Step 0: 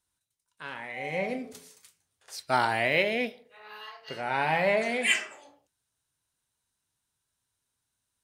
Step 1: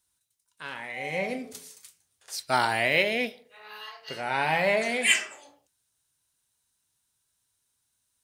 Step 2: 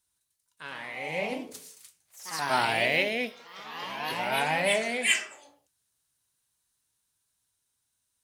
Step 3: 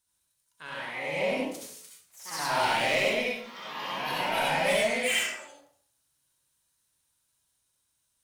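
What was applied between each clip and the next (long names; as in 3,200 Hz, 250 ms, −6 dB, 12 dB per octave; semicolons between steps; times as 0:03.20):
high-shelf EQ 3,300 Hz +7.5 dB
delay with pitch and tempo change per echo 163 ms, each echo +2 semitones, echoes 3, each echo −6 dB; level −2.5 dB
soft clipping −24 dBFS, distortion −11 dB; convolution reverb RT60 0.50 s, pre-delay 57 ms, DRR −3 dB; level −1.5 dB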